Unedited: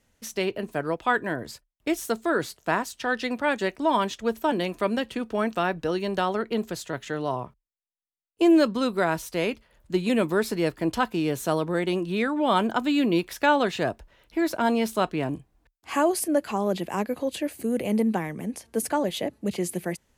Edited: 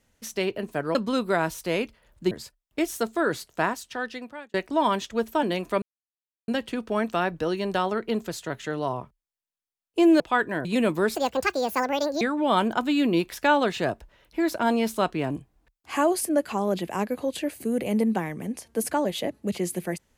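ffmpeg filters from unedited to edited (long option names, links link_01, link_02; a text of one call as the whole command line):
ffmpeg -i in.wav -filter_complex "[0:a]asplit=9[link_01][link_02][link_03][link_04][link_05][link_06][link_07][link_08][link_09];[link_01]atrim=end=0.952[link_10];[link_02]atrim=start=8.628:end=9.992[link_11];[link_03]atrim=start=1.398:end=3.63,asetpts=PTS-STARTPTS,afade=type=out:start_time=1.312:duration=0.92[link_12];[link_04]atrim=start=3.63:end=4.91,asetpts=PTS-STARTPTS,afade=type=in:duration=0.004:curve=hsin,afade=type=out:start_time=1.276:duration=0.004:curve=hsin,apad=pad_dur=0.66[link_13];[link_05]atrim=start=4.91:end=8.632,asetpts=PTS-STARTPTS,afade=type=in:duration=0.004:curve=hsin[link_14];[link_06]atrim=start=0.948:end=1.402[link_15];[link_07]atrim=start=9.988:end=10.494[link_16];[link_08]atrim=start=10.49:end=12.2,asetpts=PTS-STARTPTS,asetrate=71001,aresample=44100,atrim=end_sample=46839,asetpts=PTS-STARTPTS[link_17];[link_09]atrim=start=12.196[link_18];[link_10][link_11]acrossfade=duration=0.004:curve1=hsin:curve2=hsin[link_19];[link_12][link_13][link_14]concat=n=3:v=0:a=1[link_20];[link_19][link_20]acrossfade=duration=0.004:curve1=hsin:curve2=hsin[link_21];[link_21][link_15]acrossfade=duration=0.004:curve1=hsin:curve2=hsin[link_22];[link_22][link_16]acrossfade=duration=0.004:curve1=hsin:curve2=hsin[link_23];[link_23][link_17]acrossfade=duration=0.004:curve1=hsin:curve2=hsin[link_24];[link_24][link_18]acrossfade=duration=0.004:curve1=hsin:curve2=hsin" out.wav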